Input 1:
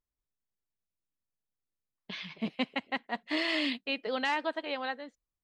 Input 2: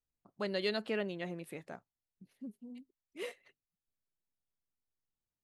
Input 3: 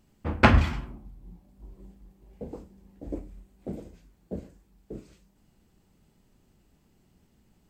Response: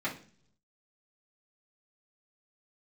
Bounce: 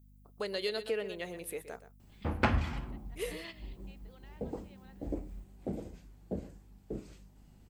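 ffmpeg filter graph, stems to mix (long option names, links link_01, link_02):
-filter_complex "[0:a]alimiter=limit=-22.5dB:level=0:latency=1,volume=-12dB[link_01];[1:a]aemphasis=mode=production:type=bsi,equalizer=frequency=450:width=6.6:gain=13,volume=1dB,asplit=3[link_02][link_03][link_04];[link_03]volume=-13.5dB[link_05];[2:a]equalizer=frequency=790:width_type=o:width=0.31:gain=3,adelay=2000,volume=1dB[link_06];[link_04]apad=whole_len=239765[link_07];[link_01][link_07]sidechaingate=range=-15dB:threshold=-59dB:ratio=16:detection=peak[link_08];[link_05]aecho=0:1:123:1[link_09];[link_08][link_02][link_06][link_09]amix=inputs=4:normalize=0,aeval=exprs='val(0)+0.00126*(sin(2*PI*50*n/s)+sin(2*PI*2*50*n/s)/2+sin(2*PI*3*50*n/s)/3+sin(2*PI*4*50*n/s)/4+sin(2*PI*5*50*n/s)/5)':channel_layout=same,acompressor=threshold=-34dB:ratio=2"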